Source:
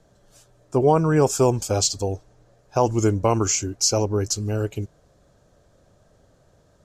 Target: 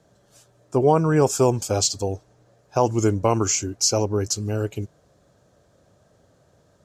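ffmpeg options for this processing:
-af "highpass=76"

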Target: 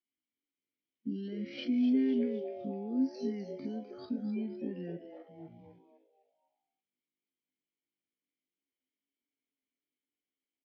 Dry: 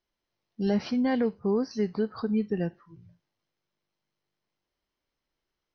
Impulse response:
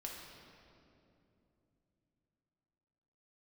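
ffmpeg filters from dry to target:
-filter_complex "[0:a]agate=range=0.2:threshold=0.002:ratio=16:detection=peak,asplit=2[s0][s1];[s1]acompressor=threshold=0.0158:ratio=12,volume=1.12[s2];[s0][s2]amix=inputs=2:normalize=0,alimiter=level_in=1.41:limit=0.0631:level=0:latency=1:release=132,volume=0.708,acrossover=split=400|3000[s3][s4][s5];[s4]acompressor=threshold=0.0126:ratio=5[s6];[s3][s6][s5]amix=inputs=3:normalize=0,asplit=3[s7][s8][s9];[s7]bandpass=f=270:t=q:w=8,volume=1[s10];[s8]bandpass=f=2290:t=q:w=8,volume=0.501[s11];[s9]bandpass=f=3010:t=q:w=8,volume=0.355[s12];[s10][s11][s12]amix=inputs=3:normalize=0,atempo=0.54,asplit=2[s13][s14];[s14]asplit=4[s15][s16][s17][s18];[s15]adelay=253,afreqshift=150,volume=0.316[s19];[s16]adelay=506,afreqshift=300,volume=0.133[s20];[s17]adelay=759,afreqshift=450,volume=0.0556[s21];[s18]adelay=1012,afreqshift=600,volume=0.0234[s22];[s19][s20][s21][s22]amix=inputs=4:normalize=0[s23];[s13][s23]amix=inputs=2:normalize=0,volume=2.66"

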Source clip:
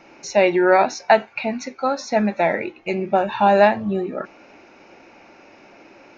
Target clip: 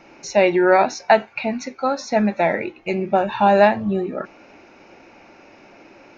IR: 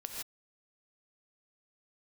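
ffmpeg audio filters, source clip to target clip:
-af "lowshelf=f=150:g=4.5"

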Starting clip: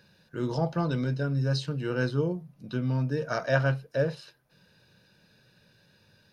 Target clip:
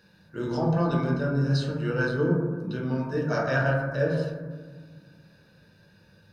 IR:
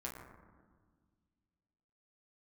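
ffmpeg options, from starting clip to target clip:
-filter_complex "[1:a]atrim=start_sample=2205[s0];[0:a][s0]afir=irnorm=-1:irlink=0,volume=1.58"

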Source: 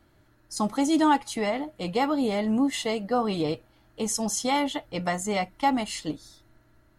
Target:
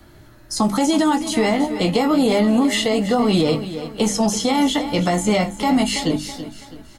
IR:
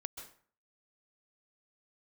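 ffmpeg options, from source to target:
-filter_complex "[0:a]acrossover=split=3800[s0][s1];[s1]acompressor=threshold=0.01:ratio=4:attack=1:release=60[s2];[s0][s2]amix=inputs=2:normalize=0,bandreject=f=50:t=h:w=6,bandreject=f=100:t=h:w=6,bandreject=f=150:t=h:w=6,bandreject=f=200:t=h:w=6,bandreject=f=250:t=h:w=6,bandreject=f=300:t=h:w=6,acrossover=split=470|5500[s3][s4][s5];[s3]acompressor=threshold=0.0398:ratio=4[s6];[s4]acompressor=threshold=0.0251:ratio=4[s7];[s5]acompressor=threshold=0.00708:ratio=4[s8];[s6][s7][s8]amix=inputs=3:normalize=0,acrossover=split=340|3000[s9][s10][s11];[s9]volume=28.2,asoftclip=hard,volume=0.0355[s12];[s10]flanger=delay=16.5:depth=2:speed=1.2[s13];[s12][s13][s11]amix=inputs=3:normalize=0,asplit=2[s14][s15];[s15]adelay=20,volume=0.282[s16];[s14][s16]amix=inputs=2:normalize=0,asplit=2[s17][s18];[s18]aecho=0:1:328|656|984|1312:0.211|0.0824|0.0321|0.0125[s19];[s17][s19]amix=inputs=2:normalize=0,alimiter=level_in=15.8:limit=0.891:release=50:level=0:latency=1,volume=0.398"

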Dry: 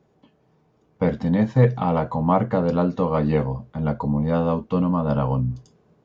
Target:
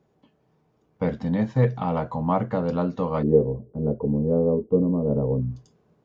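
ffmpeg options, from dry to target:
-filter_complex "[0:a]asplit=3[s0][s1][s2];[s0]afade=t=out:st=3.22:d=0.02[s3];[s1]lowpass=f=420:t=q:w=4.9,afade=t=in:st=3.22:d=0.02,afade=t=out:st=5.4:d=0.02[s4];[s2]afade=t=in:st=5.4:d=0.02[s5];[s3][s4][s5]amix=inputs=3:normalize=0,volume=0.631"

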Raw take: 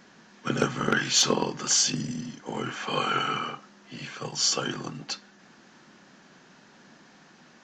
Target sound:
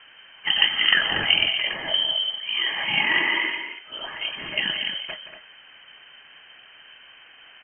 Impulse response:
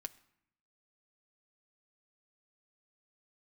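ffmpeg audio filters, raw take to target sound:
-filter_complex "[0:a]asettb=1/sr,asplit=3[s0][s1][s2];[s0]atrim=end=1.554[s3];[s1]atrim=start=1.55:end=2.85,asetpts=PTS-STARTPTS,afade=t=in:d=0.004:c=qsin,afade=t=out:st=1.296:d=0.004:c=qsin,aecho=1:1:0.8:0.53,atrim=end_sample=57330[s4];[s2]atrim=start=2.846[s5];[s3][s4]acrossfade=d=0.004:c1=hsin:c2=qsin[s6];[s6][s5]acrossfade=d=0.004:c1=qsin:c2=hsin,aecho=1:1:172|236.2:0.282|0.355,lowpass=f=2800:t=q:w=0.5098,lowpass=f=2800:t=q:w=0.6013,lowpass=f=2800:t=q:w=0.9,lowpass=f=2800:t=q:w=2.563,afreqshift=-3300,volume=1.88"

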